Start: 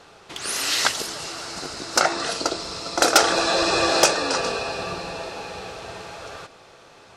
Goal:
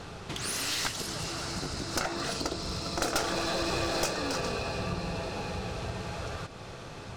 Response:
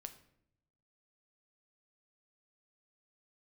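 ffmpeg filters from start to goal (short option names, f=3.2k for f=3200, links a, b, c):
-af "bass=f=250:g=14,treble=f=4k:g=0,acompressor=threshold=-41dB:ratio=2,aeval=exprs='clip(val(0),-1,0.0211)':c=same,volume=3.5dB"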